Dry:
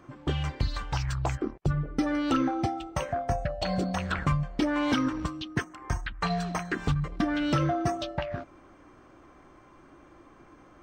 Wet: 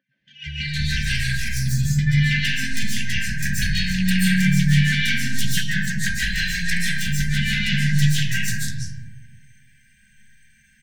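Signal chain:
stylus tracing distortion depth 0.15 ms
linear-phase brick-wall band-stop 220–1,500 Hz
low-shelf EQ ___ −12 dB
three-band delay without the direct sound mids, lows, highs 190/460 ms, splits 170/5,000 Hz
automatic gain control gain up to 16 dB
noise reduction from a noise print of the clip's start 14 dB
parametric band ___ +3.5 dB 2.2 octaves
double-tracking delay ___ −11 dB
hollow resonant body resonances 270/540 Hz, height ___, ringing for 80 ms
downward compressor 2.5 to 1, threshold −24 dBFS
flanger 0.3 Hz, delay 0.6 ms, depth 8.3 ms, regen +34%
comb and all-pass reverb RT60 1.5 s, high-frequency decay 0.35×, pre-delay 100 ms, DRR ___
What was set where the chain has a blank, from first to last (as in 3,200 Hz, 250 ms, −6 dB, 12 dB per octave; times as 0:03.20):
140 Hz, 4,500 Hz, 15 ms, 15 dB, −7.5 dB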